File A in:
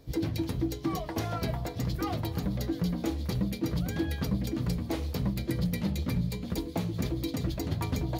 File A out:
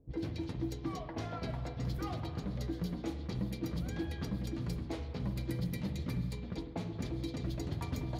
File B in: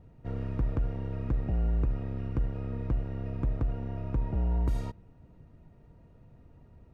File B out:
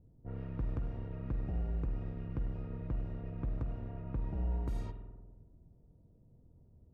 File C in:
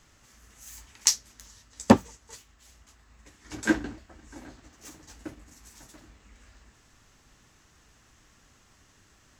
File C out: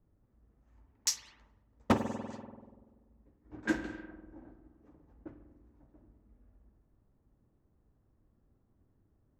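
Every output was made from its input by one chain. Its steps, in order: spring tank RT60 1.9 s, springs 48 ms, chirp 60 ms, DRR 7.5 dB; low-pass opened by the level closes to 420 Hz, open at -24.5 dBFS; wavefolder -8.5 dBFS; gain -7.5 dB

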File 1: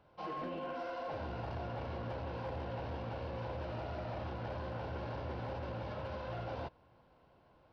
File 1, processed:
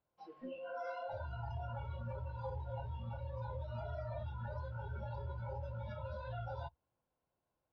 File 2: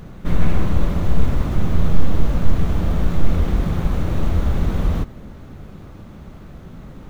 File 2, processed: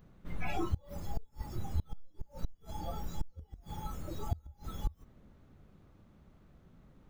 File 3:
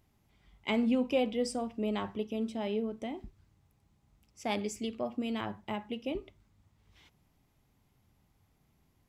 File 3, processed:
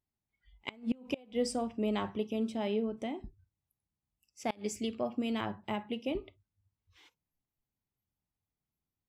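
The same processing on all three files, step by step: spectral noise reduction 23 dB; compressor 1.5:1, threshold -26 dBFS; flipped gate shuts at -21 dBFS, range -27 dB; gain +1 dB

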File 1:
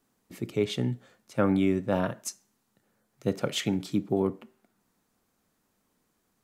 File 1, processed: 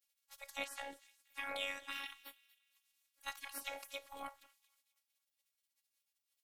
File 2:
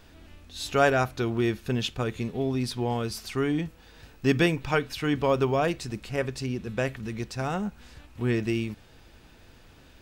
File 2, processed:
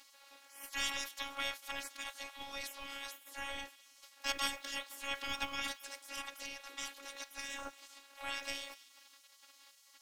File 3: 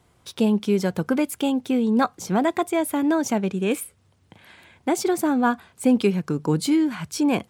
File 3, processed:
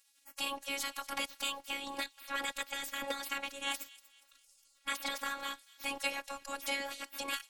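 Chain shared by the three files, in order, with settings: spectral gate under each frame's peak -25 dB weak; thin delay 0.238 s, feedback 42%, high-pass 2600 Hz, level -18 dB; robotiser 278 Hz; gain +5.5 dB

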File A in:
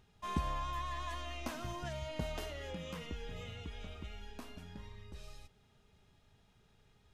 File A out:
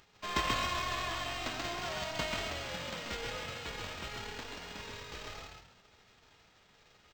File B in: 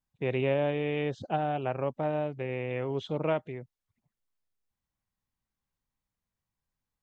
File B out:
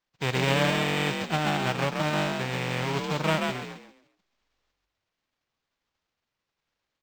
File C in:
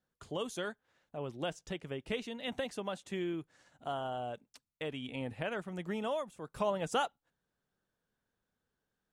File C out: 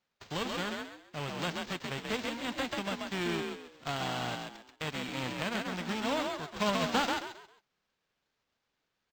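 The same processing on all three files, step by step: spectral whitening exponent 0.3; frequency-shifting echo 0.134 s, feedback 31%, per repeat +46 Hz, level -3.5 dB; decimation joined by straight lines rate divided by 4×; gain +2.5 dB

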